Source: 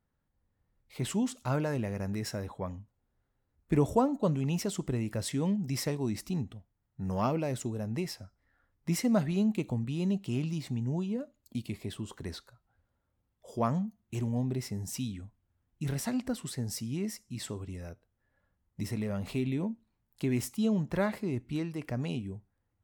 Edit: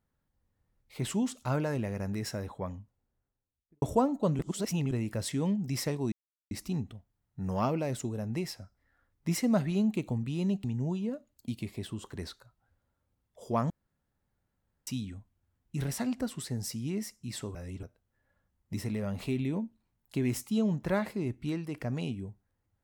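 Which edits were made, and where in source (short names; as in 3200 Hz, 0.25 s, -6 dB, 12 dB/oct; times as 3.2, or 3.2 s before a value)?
2.68–3.82 studio fade out
4.39–4.91 reverse
6.12 insert silence 0.39 s
10.25–10.71 cut
13.77–14.94 room tone
17.62–17.9 reverse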